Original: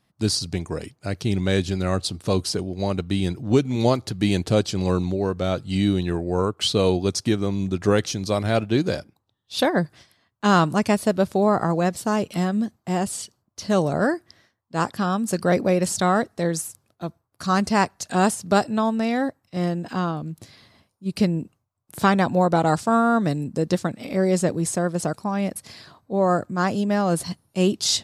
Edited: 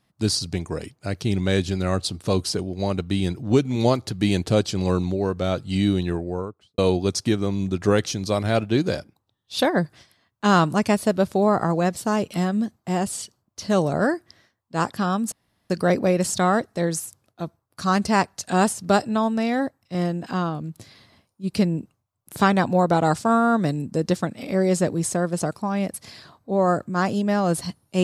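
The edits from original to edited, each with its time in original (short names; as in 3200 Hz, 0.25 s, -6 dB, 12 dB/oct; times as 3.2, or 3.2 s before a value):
6–6.78 studio fade out
15.32 insert room tone 0.38 s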